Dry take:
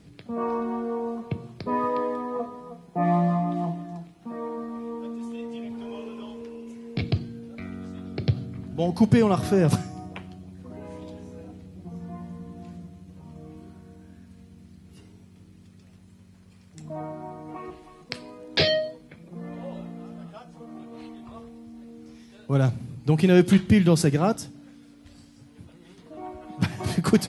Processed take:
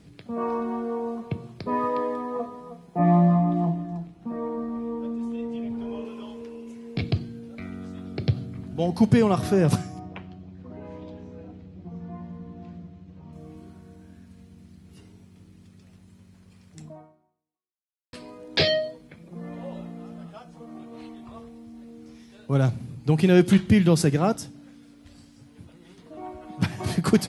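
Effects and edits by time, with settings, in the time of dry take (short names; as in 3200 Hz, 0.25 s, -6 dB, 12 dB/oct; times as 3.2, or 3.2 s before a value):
2.99–6.05 tilt -2 dB/oct
9.99–13.33 air absorption 150 m
16.83–18.13 fade out exponential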